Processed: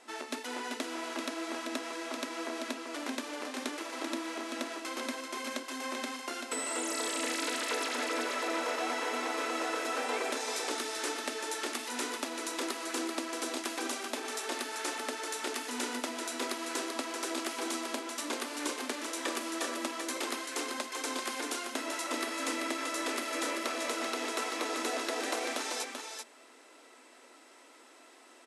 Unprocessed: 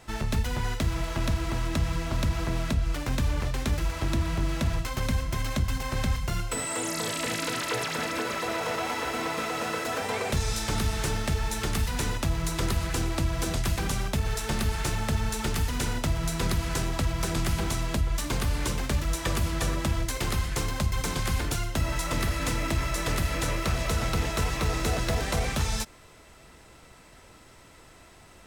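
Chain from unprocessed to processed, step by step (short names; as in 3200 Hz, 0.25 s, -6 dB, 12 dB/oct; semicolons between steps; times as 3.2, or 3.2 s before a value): FFT band-pass 230–12000 Hz; on a send: echo 0.387 s -5.5 dB; on the sum: gain -4 dB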